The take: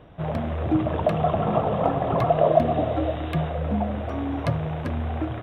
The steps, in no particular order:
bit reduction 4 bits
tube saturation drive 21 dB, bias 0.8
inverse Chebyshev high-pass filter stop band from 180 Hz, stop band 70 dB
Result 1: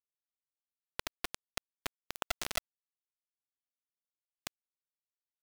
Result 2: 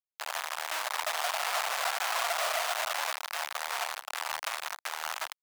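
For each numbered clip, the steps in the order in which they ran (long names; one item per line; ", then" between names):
tube saturation, then inverse Chebyshev high-pass filter, then bit reduction
bit reduction, then tube saturation, then inverse Chebyshev high-pass filter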